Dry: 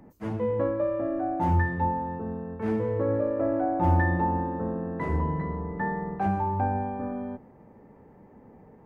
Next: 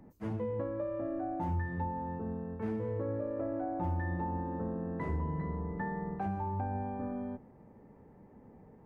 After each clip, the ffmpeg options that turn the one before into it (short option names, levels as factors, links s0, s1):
-af "acompressor=threshold=0.0447:ratio=5,lowshelf=f=270:g=4.5,volume=0.473"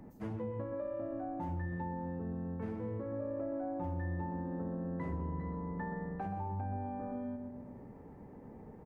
-filter_complex "[0:a]asplit=2[s0][s1];[s1]adelay=126,lowpass=f=1200:p=1,volume=0.562,asplit=2[s2][s3];[s3]adelay=126,lowpass=f=1200:p=1,volume=0.49,asplit=2[s4][s5];[s5]adelay=126,lowpass=f=1200:p=1,volume=0.49,asplit=2[s6][s7];[s7]adelay=126,lowpass=f=1200:p=1,volume=0.49,asplit=2[s8][s9];[s9]adelay=126,lowpass=f=1200:p=1,volume=0.49,asplit=2[s10][s11];[s11]adelay=126,lowpass=f=1200:p=1,volume=0.49[s12];[s0][s2][s4][s6][s8][s10][s12]amix=inputs=7:normalize=0,acompressor=threshold=0.00501:ratio=2,volume=1.5"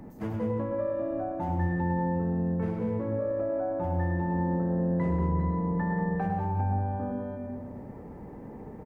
-af "aecho=1:1:103|189|354:0.447|0.501|0.15,volume=2.24"